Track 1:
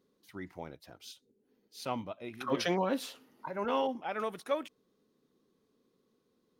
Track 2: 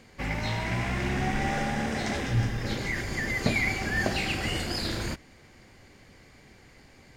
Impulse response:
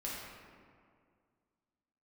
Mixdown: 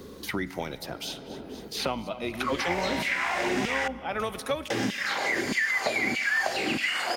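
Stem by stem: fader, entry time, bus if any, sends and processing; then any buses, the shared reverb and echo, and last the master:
-1.0 dB, 0.00 s, send -15.5 dB, echo send -20 dB, octaver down 2 oct, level -5 dB
+1.0 dB, 2.40 s, muted 3.88–4.7, send -22.5 dB, no echo send, LFO high-pass saw down 1.6 Hz 200–2900 Hz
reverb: on, RT60 2.1 s, pre-delay 5 ms
echo: feedback echo 0.238 s, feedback 49%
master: three-band squash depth 100%

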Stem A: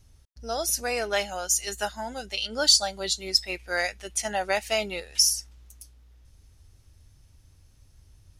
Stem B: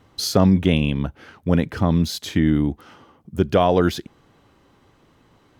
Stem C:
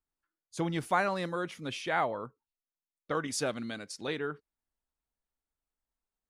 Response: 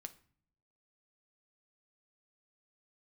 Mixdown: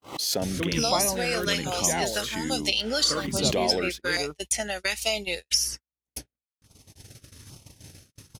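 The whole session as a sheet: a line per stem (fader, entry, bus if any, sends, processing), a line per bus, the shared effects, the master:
0.0 dB, 0.35 s, send -19 dB, gate with hold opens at -48 dBFS; three-band squash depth 100%
-5.5 dB, 0.00 s, send -15.5 dB, HPF 750 Hz 6 dB/oct; bell 4300 Hz -3 dB 1.5 oct; backwards sustainer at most 28 dB/s
+2.5 dB, 0.00 s, no send, dry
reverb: on, pre-delay 6 ms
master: LFO notch saw down 1.2 Hz 620–1900 Hz; gate -32 dBFS, range -59 dB

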